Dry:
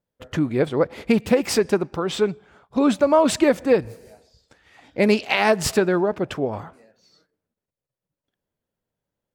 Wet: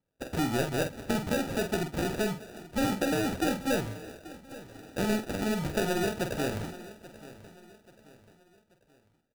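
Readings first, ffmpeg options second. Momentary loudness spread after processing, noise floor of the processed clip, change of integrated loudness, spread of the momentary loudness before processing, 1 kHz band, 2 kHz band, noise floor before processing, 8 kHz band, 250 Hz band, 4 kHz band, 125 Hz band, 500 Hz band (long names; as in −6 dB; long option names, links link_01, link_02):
17 LU, −70 dBFS, −10.0 dB, 11 LU, −9.0 dB, −7.5 dB, below −85 dBFS, −7.0 dB, −8.5 dB, −7.5 dB, −4.0 dB, −12.0 dB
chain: -filter_complex "[0:a]equalizer=frequency=1400:width=3.8:gain=11.5,acrossover=split=340[link_01][link_02];[link_01]asoftclip=type=tanh:threshold=-29.5dB[link_03];[link_02]acompressor=threshold=-32dB:ratio=6[link_04];[link_03][link_04]amix=inputs=2:normalize=0,acrusher=samples=41:mix=1:aa=0.000001,asplit=2[link_05][link_06];[link_06]adelay=47,volume=-7.5dB[link_07];[link_05][link_07]amix=inputs=2:normalize=0,asplit=2[link_08][link_09];[link_09]aecho=0:1:834|1668|2502:0.133|0.0533|0.0213[link_10];[link_08][link_10]amix=inputs=2:normalize=0"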